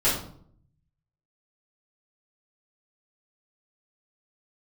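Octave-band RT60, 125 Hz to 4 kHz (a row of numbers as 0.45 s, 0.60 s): 1.2 s, 0.80 s, 0.65 s, 0.55 s, 0.40 s, 0.40 s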